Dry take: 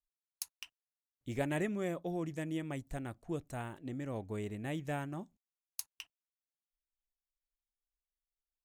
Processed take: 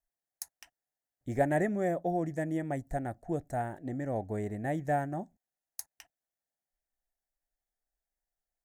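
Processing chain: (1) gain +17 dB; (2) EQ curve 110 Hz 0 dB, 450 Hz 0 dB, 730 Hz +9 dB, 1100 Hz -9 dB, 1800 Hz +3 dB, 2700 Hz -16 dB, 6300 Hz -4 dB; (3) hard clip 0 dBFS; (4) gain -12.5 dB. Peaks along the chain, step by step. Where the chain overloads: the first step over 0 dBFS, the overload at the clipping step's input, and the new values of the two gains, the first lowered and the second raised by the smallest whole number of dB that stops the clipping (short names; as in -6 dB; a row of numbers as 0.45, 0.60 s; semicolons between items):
-1.0, -3.0, -3.0, -15.5 dBFS; no overload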